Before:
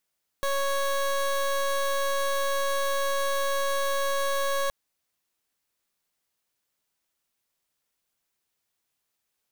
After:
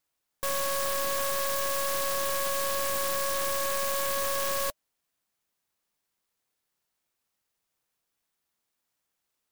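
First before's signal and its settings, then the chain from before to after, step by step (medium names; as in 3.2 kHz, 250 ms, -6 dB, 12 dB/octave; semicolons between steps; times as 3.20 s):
pulse 554 Hz, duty 22% -26 dBFS 4.27 s
bass shelf 480 Hz -5.5 dB; band-stop 600 Hz, Q 12; sampling jitter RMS 0.11 ms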